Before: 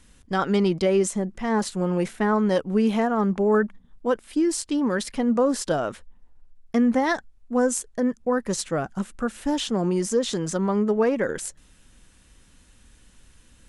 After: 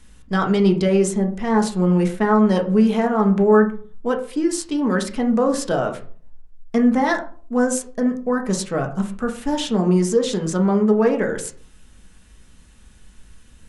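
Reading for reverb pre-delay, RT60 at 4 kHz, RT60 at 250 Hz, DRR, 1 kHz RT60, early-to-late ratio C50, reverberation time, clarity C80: 5 ms, 0.25 s, 0.55 s, 3.0 dB, 0.40 s, 11.5 dB, 0.45 s, 16.0 dB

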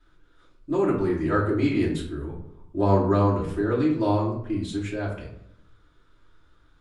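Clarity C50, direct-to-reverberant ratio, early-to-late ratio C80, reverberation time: 6.0 dB, -10.5 dB, 9.0 dB, 0.75 s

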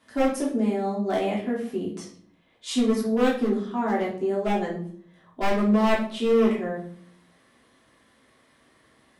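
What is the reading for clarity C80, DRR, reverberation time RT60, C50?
11.0 dB, -6.0 dB, 0.55 s, 6.0 dB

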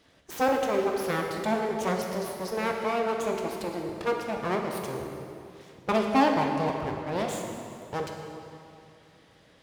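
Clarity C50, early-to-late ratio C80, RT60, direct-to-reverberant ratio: 3.0 dB, 4.5 dB, 2.6 s, 1.5 dB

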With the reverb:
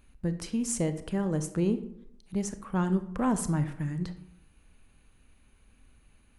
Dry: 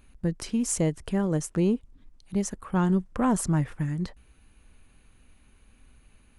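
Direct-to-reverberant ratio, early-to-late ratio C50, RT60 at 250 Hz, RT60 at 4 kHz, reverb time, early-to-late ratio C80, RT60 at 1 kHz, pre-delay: 10.0 dB, 12.5 dB, 0.80 s, 0.45 s, 0.75 s, 15.5 dB, 0.65 s, 29 ms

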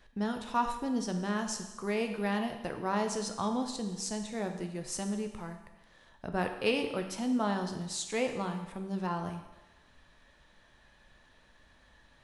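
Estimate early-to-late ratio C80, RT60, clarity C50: 9.5 dB, 1.1 s, 8.0 dB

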